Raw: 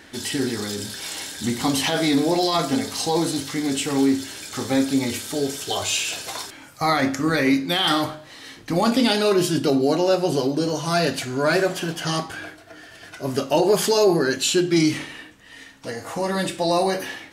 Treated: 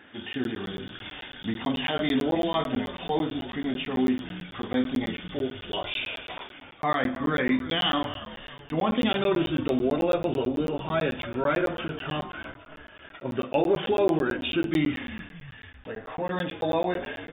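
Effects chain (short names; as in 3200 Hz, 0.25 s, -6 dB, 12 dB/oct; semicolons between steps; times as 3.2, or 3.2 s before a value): HPF 140 Hz 6 dB/oct; de-hum 375.2 Hz, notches 35; pitch shift -1 st; brick-wall FIR low-pass 3700 Hz; frequency-shifting echo 0.304 s, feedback 48%, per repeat -76 Hz, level -15 dB; crackling interface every 0.11 s, samples 512, zero, from 0.33; gain -4.5 dB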